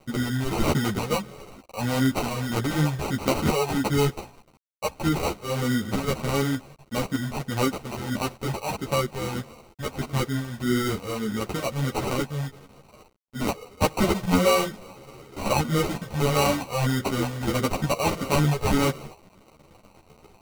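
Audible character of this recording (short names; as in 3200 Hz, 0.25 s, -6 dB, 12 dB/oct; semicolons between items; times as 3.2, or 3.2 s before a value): a quantiser's noise floor 8-bit, dither none; phasing stages 6, 1.6 Hz, lowest notch 270–2500 Hz; aliases and images of a low sample rate 1700 Hz, jitter 0%; a shimmering, thickened sound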